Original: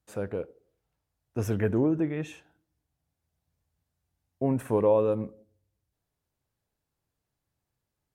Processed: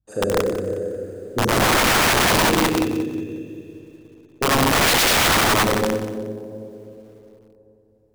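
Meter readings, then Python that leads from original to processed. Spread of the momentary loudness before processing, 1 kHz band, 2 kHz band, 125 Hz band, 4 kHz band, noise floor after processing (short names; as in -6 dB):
15 LU, +20.0 dB, +27.0 dB, +7.0 dB, n/a, -57 dBFS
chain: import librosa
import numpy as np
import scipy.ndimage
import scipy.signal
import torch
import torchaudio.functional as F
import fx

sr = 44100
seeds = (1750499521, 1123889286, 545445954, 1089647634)

p1 = fx.envelope_sharpen(x, sr, power=2.0)
p2 = fx.rev_schroeder(p1, sr, rt60_s=3.4, comb_ms=28, drr_db=-7.5)
p3 = (np.mod(10.0 ** (19.5 / 20.0) * p2 + 1.0, 2.0) - 1.0) / 10.0 ** (19.5 / 20.0)
p4 = p3 + fx.echo_feedback(p3, sr, ms=92, feedback_pct=33, wet_db=-12.0, dry=0)
p5 = fx.echo_crushed(p4, sr, ms=180, feedback_pct=35, bits=9, wet_db=-14)
y = F.gain(torch.from_numpy(p5), 7.0).numpy()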